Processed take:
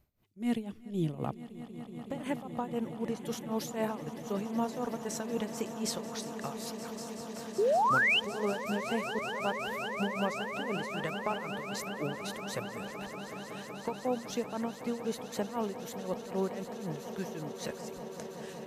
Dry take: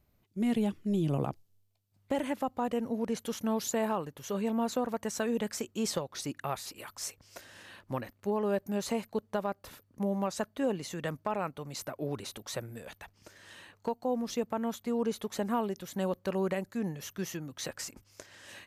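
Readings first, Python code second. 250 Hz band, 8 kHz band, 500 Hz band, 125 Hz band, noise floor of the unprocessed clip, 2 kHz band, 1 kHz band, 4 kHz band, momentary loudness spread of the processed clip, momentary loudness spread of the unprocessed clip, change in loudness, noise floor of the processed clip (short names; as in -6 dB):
-2.5 dB, -3.0 dB, -1.0 dB, -2.5 dB, -70 dBFS, +9.0 dB, +2.0 dB, +3.5 dB, 9 LU, 15 LU, -0.5 dB, -46 dBFS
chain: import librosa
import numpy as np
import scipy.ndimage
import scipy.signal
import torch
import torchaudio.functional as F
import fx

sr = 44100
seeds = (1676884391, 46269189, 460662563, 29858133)

p1 = x * (1.0 - 0.85 / 2.0 + 0.85 / 2.0 * np.cos(2.0 * np.pi * 3.9 * (np.arange(len(x)) / sr)))
p2 = fx.spec_paint(p1, sr, seeds[0], shape='rise', start_s=7.58, length_s=0.62, low_hz=370.0, high_hz=3200.0, level_db=-26.0)
y = p2 + fx.echo_swell(p2, sr, ms=187, loudest=8, wet_db=-16, dry=0)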